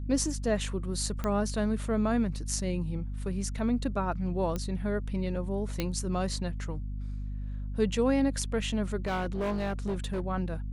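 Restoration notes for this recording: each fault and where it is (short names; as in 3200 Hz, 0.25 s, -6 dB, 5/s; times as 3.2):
hum 50 Hz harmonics 5 -35 dBFS
1.24 pop -18 dBFS
4.56 pop -19 dBFS
5.8 pop -15 dBFS
9.06–10.24 clipped -27 dBFS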